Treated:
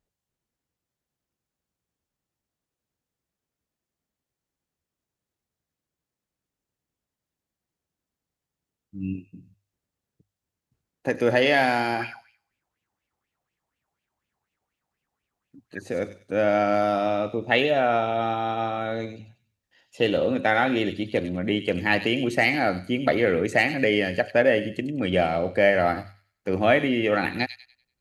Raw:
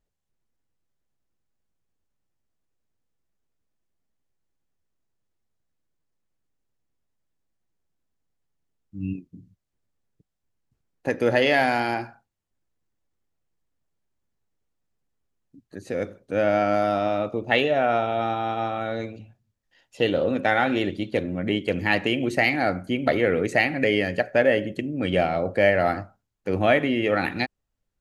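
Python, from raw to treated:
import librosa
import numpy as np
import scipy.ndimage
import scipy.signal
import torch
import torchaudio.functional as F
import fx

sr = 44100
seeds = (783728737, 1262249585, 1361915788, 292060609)

y = scipy.signal.sosfilt(scipy.signal.butter(2, 44.0, 'highpass', fs=sr, output='sos'), x)
y = fx.hum_notches(y, sr, base_hz=50, count=2)
y = fx.echo_wet_highpass(y, sr, ms=97, feedback_pct=32, hz=3600.0, wet_db=-5.0)
y = fx.bell_lfo(y, sr, hz=4.1, low_hz=750.0, high_hz=2800.0, db=17, at=(11.99, 15.86), fade=0.02)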